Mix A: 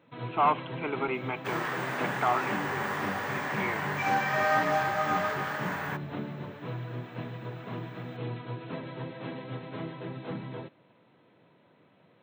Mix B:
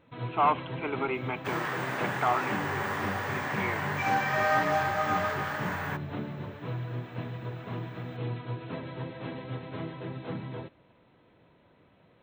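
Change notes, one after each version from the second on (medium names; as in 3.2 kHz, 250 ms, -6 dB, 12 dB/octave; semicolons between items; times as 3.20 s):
first sound: remove high-pass 120 Hz 24 dB/octave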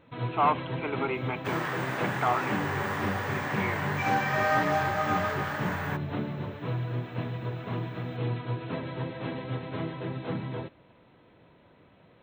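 first sound +3.5 dB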